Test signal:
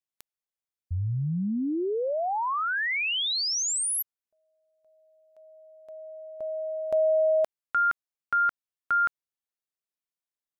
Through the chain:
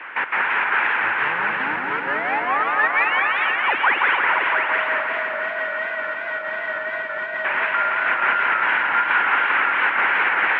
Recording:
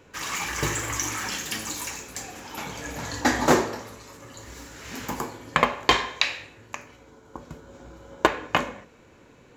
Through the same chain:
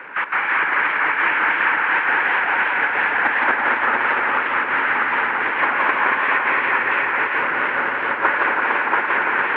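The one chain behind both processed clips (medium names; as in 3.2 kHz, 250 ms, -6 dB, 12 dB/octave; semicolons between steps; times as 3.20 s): one-bit delta coder 16 kbps, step -19 dBFS; peaking EQ 1.8 kHz +5.5 dB 0.31 oct; one-sided clip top -22 dBFS; added noise pink -36 dBFS; trance gate "..x.xxxx.xx" 188 bpm -12 dB; cabinet simulation 430–2500 Hz, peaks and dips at 450 Hz -3 dB, 660 Hz -6 dB, 930 Hz +7 dB, 1.5 kHz +9 dB, 2.3 kHz +4 dB; on a send: multi-head delay 228 ms, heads all three, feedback 43%, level -7 dB; on the sum: harmonic-percussive split harmonic -6 dB; modulated delay 169 ms, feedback 64%, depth 124 cents, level -3 dB; trim +1.5 dB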